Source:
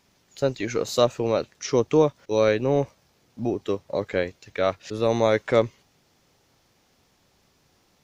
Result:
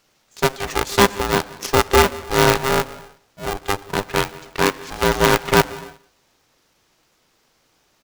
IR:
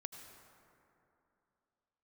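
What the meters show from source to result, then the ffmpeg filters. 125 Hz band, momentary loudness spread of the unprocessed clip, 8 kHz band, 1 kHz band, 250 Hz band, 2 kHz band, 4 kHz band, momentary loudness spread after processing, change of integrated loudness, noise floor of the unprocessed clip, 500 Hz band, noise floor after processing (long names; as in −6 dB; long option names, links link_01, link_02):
+5.5 dB, 8 LU, +12.0 dB, +11.0 dB, +3.0 dB, +13.0 dB, +11.5 dB, 11 LU, +5.0 dB, −65 dBFS, +1.5 dB, −63 dBFS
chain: -filter_complex "[0:a]equalizer=frequency=150:width=0.51:gain=-5.5,aeval=exprs='0.473*(cos(1*acos(clip(val(0)/0.473,-1,1)))-cos(1*PI/2))+0.188*(cos(6*acos(clip(val(0)/0.473,-1,1)))-cos(6*PI/2))':channel_layout=same,aecho=1:1:179|358:0.075|0.015,asplit=2[link_01][link_02];[1:a]atrim=start_sample=2205,afade=type=out:start_time=0.37:duration=0.01,atrim=end_sample=16758[link_03];[link_02][link_03]afir=irnorm=-1:irlink=0,volume=-5.5dB[link_04];[link_01][link_04]amix=inputs=2:normalize=0,aeval=exprs='val(0)*sgn(sin(2*PI*400*n/s))':channel_layout=same"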